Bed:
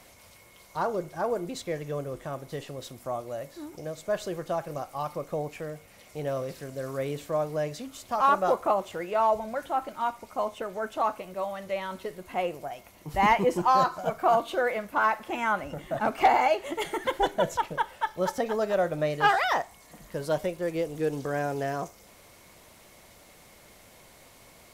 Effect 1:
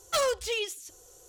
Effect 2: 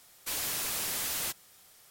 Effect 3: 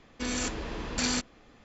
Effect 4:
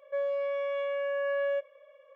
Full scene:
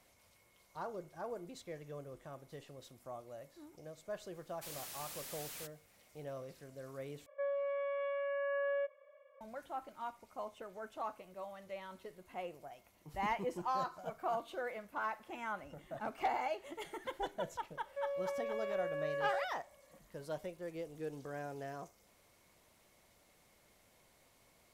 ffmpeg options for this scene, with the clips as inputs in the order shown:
ffmpeg -i bed.wav -i cue0.wav -i cue1.wav -i cue2.wav -i cue3.wav -filter_complex "[4:a]asplit=2[link_01][link_02];[0:a]volume=-14.5dB[link_03];[link_01]acrossover=split=480 2500:gain=0.2 1 0.112[link_04][link_05][link_06];[link_04][link_05][link_06]amix=inputs=3:normalize=0[link_07];[link_03]asplit=2[link_08][link_09];[link_08]atrim=end=7.264[link_10];[link_07]atrim=end=2.15,asetpts=PTS-STARTPTS,volume=-3.5dB[link_11];[link_09]atrim=start=9.406[link_12];[2:a]atrim=end=1.9,asetpts=PTS-STARTPTS,volume=-14.5dB,afade=type=in:duration=0.004:curve=hsin,afade=type=out:start_time=1.896:duration=0.004:curve=hsin,adelay=4350[link_13];[link_02]atrim=end=2.15,asetpts=PTS-STARTPTS,volume=-9dB,afade=type=in:duration=0.004:curve=hsin,afade=type=out:start_time=2.146:duration=0.004:curve=hsin,adelay=17840[link_14];[link_10][link_11]acrossfade=duration=0.004:curve1=hsin:curve2=hsin[link_15];[link_15][link_12]acrossfade=duration=0.004:curve1=hsin:curve2=hsin[link_16];[link_16][link_13][link_14]amix=inputs=3:normalize=0" out.wav

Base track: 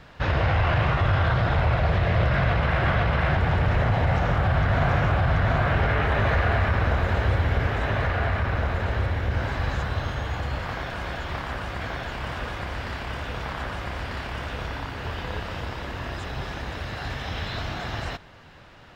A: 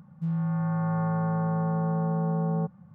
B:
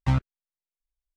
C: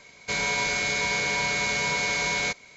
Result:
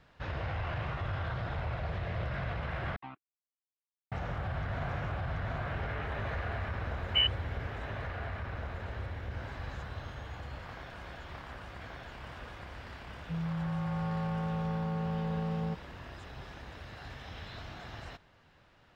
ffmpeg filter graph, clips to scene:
ffmpeg -i bed.wav -i cue0.wav -i cue1.wav -filter_complex "[2:a]asplit=2[link_01][link_02];[0:a]volume=-14dB[link_03];[link_01]highpass=300,equalizer=frequency=310:width_type=q:width=4:gain=6,equalizer=frequency=520:width_type=q:width=4:gain=-10,equalizer=frequency=750:width_type=q:width=4:gain=9,equalizer=frequency=1100:width_type=q:width=4:gain=7,equalizer=frequency=2600:width_type=q:width=4:gain=5,lowpass=frequency=3300:width=0.5412,lowpass=frequency=3300:width=1.3066[link_04];[link_02]lowpass=frequency=2600:width_type=q:width=0.5098,lowpass=frequency=2600:width_type=q:width=0.6013,lowpass=frequency=2600:width_type=q:width=0.9,lowpass=frequency=2600:width_type=q:width=2.563,afreqshift=-3100[link_05];[link_03]asplit=2[link_06][link_07];[link_06]atrim=end=2.964[link_08];[link_04]atrim=end=1.16,asetpts=PTS-STARTPTS,volume=-18dB[link_09];[link_07]atrim=start=4.116[link_10];[link_05]atrim=end=1.16,asetpts=PTS-STARTPTS,volume=-5.5dB,afade=type=in:duration=0.004:curve=hsin,afade=type=out:start_time=1.156:duration=0.004:curve=hsin,adelay=7080[link_11];[1:a]atrim=end=2.94,asetpts=PTS-STARTPTS,volume=-7dB,afade=type=in:duration=0.004:curve=hsin,afade=type=out:start_time=2.936:duration=0.004:curve=hsin,adelay=13080[link_12];[link_08][link_09]acrossfade=duration=0.004:curve1=hsin:curve2=hsin[link_13];[link_13][link_10]acrossfade=duration=0.004:curve1=hsin:curve2=hsin[link_14];[link_14][link_11][link_12]amix=inputs=3:normalize=0" out.wav

